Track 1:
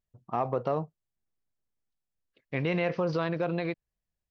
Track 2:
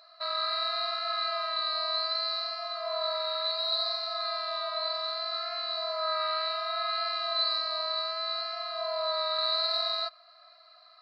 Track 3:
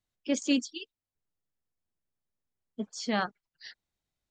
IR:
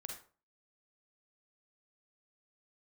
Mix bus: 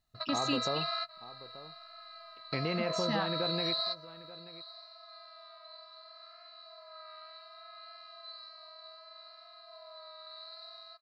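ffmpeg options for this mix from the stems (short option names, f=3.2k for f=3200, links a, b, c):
-filter_complex "[0:a]volume=0.5dB,asplit=3[a][b][c];[b]volume=-23.5dB[d];[1:a]volume=2dB,asplit=2[e][f];[f]volume=-22dB[g];[2:a]aecho=1:1:1.1:0.92,volume=-0.5dB[h];[c]apad=whole_len=485909[i];[e][i]sidechaingate=range=-33dB:threshold=-57dB:ratio=16:detection=peak[j];[d][g]amix=inputs=2:normalize=0,aecho=0:1:883:1[k];[a][j][h][k]amix=inputs=4:normalize=0,acompressor=threshold=-34dB:ratio=2"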